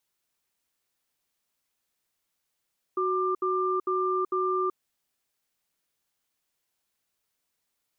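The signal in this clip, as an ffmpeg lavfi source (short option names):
-f lavfi -i "aevalsrc='0.0473*(sin(2*PI*371*t)+sin(2*PI*1190*t))*clip(min(mod(t,0.45),0.38-mod(t,0.45))/0.005,0,1)':d=1.75:s=44100"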